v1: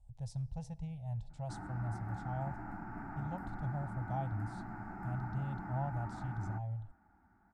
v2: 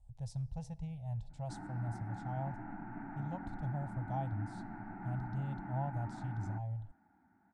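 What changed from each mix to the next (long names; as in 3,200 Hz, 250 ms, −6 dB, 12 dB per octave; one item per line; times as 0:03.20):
background: add loudspeaker in its box 130–3,300 Hz, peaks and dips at 270 Hz +4 dB, 470 Hz −9 dB, 1,200 Hz −9 dB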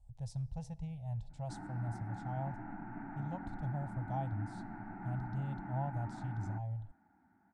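nothing changed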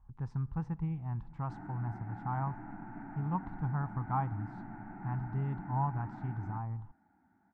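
speech: remove drawn EQ curve 110 Hz 0 dB, 350 Hz −24 dB, 590 Hz +9 dB, 1,200 Hz −26 dB, 3,700 Hz +8 dB
master: add high-frequency loss of the air 130 metres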